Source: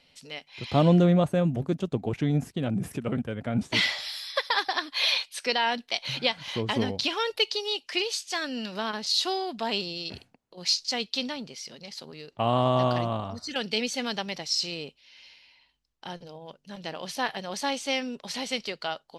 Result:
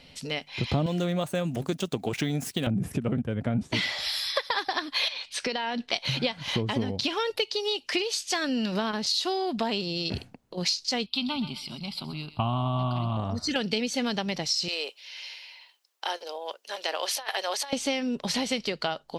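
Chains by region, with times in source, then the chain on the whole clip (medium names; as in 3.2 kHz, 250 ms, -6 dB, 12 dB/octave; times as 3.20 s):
0.86–2.67 s: median filter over 3 samples + tilt EQ +4 dB/octave
5.08–5.93 s: low-pass 6.5 kHz + compression 4:1, threshold -34 dBFS
11.06–13.17 s: static phaser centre 1.8 kHz, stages 6 + thinning echo 128 ms, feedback 40%, high-pass 690 Hz, level -13 dB
14.68–17.73 s: Bessel high-pass 680 Hz, order 8 + treble shelf 9.2 kHz +7 dB + compressor with a negative ratio -36 dBFS, ratio -0.5
whole clip: bass shelf 350 Hz +7.5 dB; compression 6:1, threshold -33 dBFS; trim +8 dB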